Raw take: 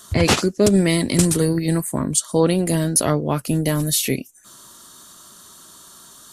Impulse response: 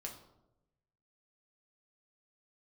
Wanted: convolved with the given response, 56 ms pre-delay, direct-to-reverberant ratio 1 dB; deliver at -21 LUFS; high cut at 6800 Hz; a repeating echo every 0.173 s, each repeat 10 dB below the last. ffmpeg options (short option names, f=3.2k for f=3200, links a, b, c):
-filter_complex "[0:a]lowpass=6.8k,aecho=1:1:173|346|519|692:0.316|0.101|0.0324|0.0104,asplit=2[a][b];[1:a]atrim=start_sample=2205,adelay=56[c];[b][c]afir=irnorm=-1:irlink=0,volume=1.5dB[d];[a][d]amix=inputs=2:normalize=0,volume=-5dB"